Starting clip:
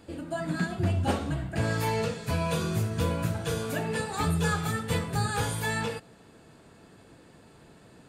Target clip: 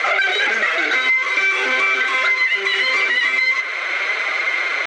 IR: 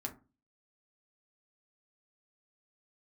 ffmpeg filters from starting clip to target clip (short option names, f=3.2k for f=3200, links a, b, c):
-filter_complex "[0:a]asplit=2[a][b];[1:a]atrim=start_sample=2205,atrim=end_sample=3087[c];[b][c]afir=irnorm=-1:irlink=0,volume=-19.5dB[d];[a][d]amix=inputs=2:normalize=0,atempo=0.71,asplit=2[e][f];[f]highpass=f=720:p=1,volume=35dB,asoftclip=type=tanh:threshold=-14.5dB[g];[e][g]amix=inputs=2:normalize=0,lowpass=f=2.3k:p=1,volume=-6dB,equalizer=f=890:w=8:g=14.5,asetrate=103194,aresample=44100,alimiter=limit=-15.5dB:level=0:latency=1:release=492,highpass=f=360:w=0.5412,highpass=f=360:w=1.3066,equalizer=f=890:t=q:w=4:g=-9,equalizer=f=1.4k:t=q:w=4:g=9,equalizer=f=2.3k:t=q:w=4:g=8,equalizer=f=5.1k:t=q:w=4:g=-5,lowpass=f=5.7k:w=0.5412,lowpass=f=5.7k:w=1.3066,acompressor=threshold=-19dB:ratio=6,volume=5dB"